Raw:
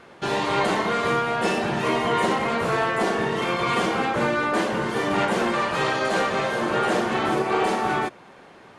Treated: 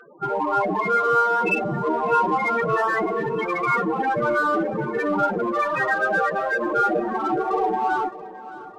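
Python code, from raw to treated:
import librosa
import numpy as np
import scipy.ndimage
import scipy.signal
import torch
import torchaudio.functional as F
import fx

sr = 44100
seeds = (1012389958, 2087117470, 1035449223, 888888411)

p1 = fx.spec_topn(x, sr, count=8)
p2 = fx.peak_eq(p1, sr, hz=2700.0, db=12.5, octaves=1.7)
p3 = np.clip(p2, -10.0 ** (-29.5 / 20.0), 10.0 ** (-29.5 / 20.0))
p4 = p2 + (p3 * 10.0 ** (-8.0 / 20.0))
p5 = p4 + 0.37 * np.pad(p4, (int(6.5 * sr / 1000.0), 0))[:len(p4)]
y = fx.echo_feedback(p5, sr, ms=614, feedback_pct=49, wet_db=-16.5)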